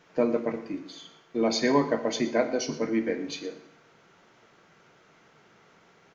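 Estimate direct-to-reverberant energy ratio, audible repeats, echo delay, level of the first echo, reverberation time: 8.0 dB, 1, 119 ms, −17.0 dB, 0.75 s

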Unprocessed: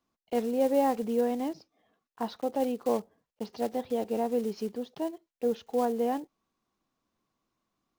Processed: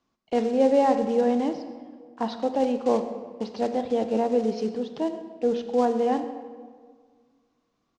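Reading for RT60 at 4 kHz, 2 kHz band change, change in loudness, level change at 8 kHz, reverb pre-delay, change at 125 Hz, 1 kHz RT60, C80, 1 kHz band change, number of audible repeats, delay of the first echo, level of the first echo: 1.1 s, +5.5 dB, +5.5 dB, can't be measured, 22 ms, can't be measured, 1.6 s, 10.5 dB, +5.5 dB, 1, 129 ms, −18.5 dB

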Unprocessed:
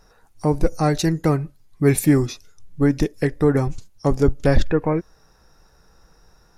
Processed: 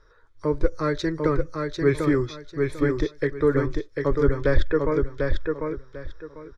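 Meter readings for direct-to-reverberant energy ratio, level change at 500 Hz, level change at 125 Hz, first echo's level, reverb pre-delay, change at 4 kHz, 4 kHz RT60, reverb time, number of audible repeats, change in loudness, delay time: no reverb audible, −0.5 dB, −6.5 dB, −4.0 dB, no reverb audible, −4.5 dB, no reverb audible, no reverb audible, 3, −4.0 dB, 746 ms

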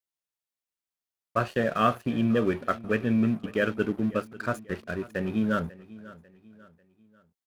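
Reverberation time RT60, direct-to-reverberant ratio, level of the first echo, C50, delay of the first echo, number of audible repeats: no reverb audible, no reverb audible, −19.0 dB, no reverb audible, 544 ms, 3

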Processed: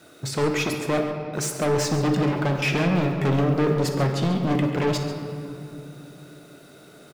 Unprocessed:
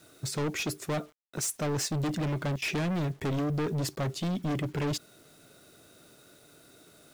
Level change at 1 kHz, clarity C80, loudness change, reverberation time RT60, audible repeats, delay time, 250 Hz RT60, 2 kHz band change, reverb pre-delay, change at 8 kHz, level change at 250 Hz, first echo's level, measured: +10.0 dB, 6.0 dB, +8.0 dB, 2.9 s, 2, 60 ms, 3.9 s, +8.5 dB, 5 ms, +2.5 dB, +8.5 dB, −13.5 dB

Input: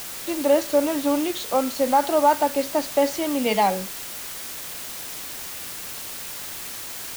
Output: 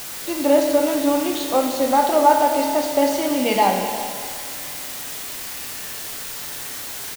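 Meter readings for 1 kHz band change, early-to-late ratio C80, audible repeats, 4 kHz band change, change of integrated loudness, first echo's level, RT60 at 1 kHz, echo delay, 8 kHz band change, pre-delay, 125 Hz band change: +3.5 dB, 4.5 dB, 1, +3.0 dB, +3.0 dB, −16.0 dB, 2.1 s, 366 ms, +3.0 dB, 7 ms, can't be measured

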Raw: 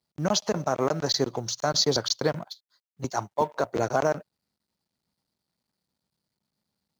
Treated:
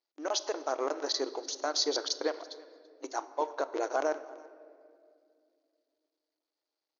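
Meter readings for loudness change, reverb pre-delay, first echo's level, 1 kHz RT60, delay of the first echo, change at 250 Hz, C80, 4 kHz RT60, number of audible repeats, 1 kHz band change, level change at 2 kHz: −6.5 dB, 6 ms, −23.0 dB, 1.8 s, 334 ms, −9.5 dB, 15.0 dB, 1.2 s, 1, −6.0 dB, −5.5 dB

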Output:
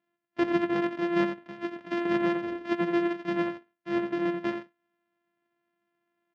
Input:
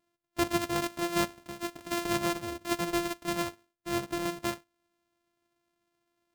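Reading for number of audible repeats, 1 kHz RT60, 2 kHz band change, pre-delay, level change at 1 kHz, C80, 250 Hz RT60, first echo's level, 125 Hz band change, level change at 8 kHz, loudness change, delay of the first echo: 1, no reverb audible, +2.0 dB, no reverb audible, 0.0 dB, no reverb audible, no reverb audible, −8.5 dB, −1.0 dB, below −20 dB, +3.0 dB, 87 ms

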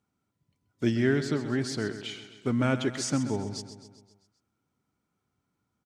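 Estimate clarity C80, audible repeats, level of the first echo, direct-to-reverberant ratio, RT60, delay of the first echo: no reverb audible, 5, −11.5 dB, no reverb audible, no reverb audible, 131 ms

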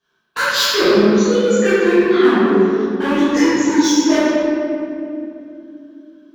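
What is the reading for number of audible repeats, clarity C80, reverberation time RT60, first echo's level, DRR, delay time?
no echo audible, −2.5 dB, 2.6 s, no echo audible, −13.5 dB, no echo audible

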